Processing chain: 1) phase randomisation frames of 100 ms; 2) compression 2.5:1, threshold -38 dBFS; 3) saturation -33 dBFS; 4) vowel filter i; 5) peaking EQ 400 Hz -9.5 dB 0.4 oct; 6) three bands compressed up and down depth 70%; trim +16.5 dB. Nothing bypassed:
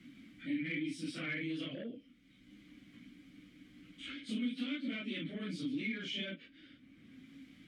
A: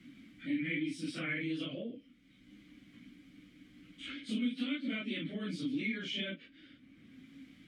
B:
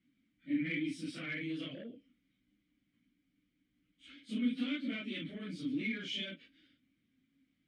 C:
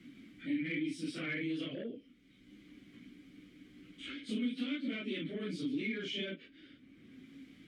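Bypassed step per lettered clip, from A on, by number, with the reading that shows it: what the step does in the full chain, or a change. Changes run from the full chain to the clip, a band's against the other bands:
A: 3, distortion -16 dB; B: 6, crest factor change +3.0 dB; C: 5, 500 Hz band +4.5 dB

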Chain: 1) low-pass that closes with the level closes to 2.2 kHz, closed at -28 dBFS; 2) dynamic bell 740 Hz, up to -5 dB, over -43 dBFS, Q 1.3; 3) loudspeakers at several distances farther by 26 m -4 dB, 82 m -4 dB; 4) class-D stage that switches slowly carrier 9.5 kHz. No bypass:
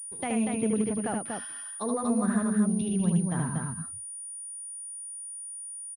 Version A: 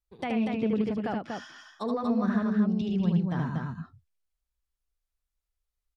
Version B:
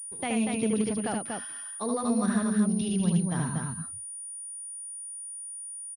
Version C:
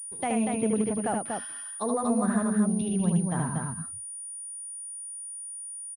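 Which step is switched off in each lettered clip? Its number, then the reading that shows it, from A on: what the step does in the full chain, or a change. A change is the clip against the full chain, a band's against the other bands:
4, momentary loudness spread change +3 LU; 1, 2 kHz band +1.5 dB; 2, 1 kHz band +3.0 dB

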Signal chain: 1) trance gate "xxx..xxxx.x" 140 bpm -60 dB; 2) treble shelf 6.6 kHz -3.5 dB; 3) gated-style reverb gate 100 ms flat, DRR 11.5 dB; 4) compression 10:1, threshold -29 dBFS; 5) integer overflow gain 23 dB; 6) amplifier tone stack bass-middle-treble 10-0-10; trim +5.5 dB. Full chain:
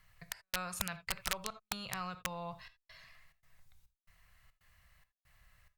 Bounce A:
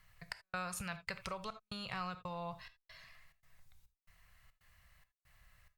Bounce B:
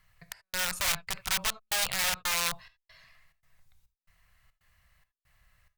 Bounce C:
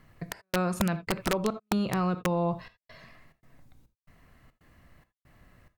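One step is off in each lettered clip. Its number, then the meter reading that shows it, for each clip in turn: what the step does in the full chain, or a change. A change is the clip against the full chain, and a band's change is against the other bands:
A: 5, distortion -8 dB; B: 4, mean gain reduction 3.0 dB; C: 6, 8 kHz band -13.0 dB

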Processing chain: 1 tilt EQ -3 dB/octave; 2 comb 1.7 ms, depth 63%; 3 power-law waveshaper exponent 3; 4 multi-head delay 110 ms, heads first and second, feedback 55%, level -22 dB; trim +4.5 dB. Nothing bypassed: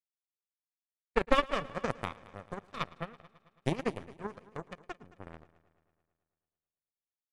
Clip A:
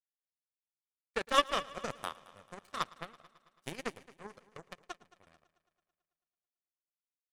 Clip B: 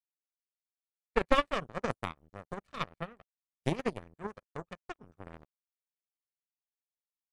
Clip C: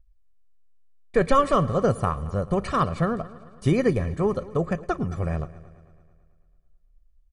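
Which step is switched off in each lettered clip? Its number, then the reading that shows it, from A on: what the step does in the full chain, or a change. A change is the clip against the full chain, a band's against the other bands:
1, 125 Hz band -11.5 dB; 4, echo-to-direct -16.5 dB to none; 3, crest factor change -11.5 dB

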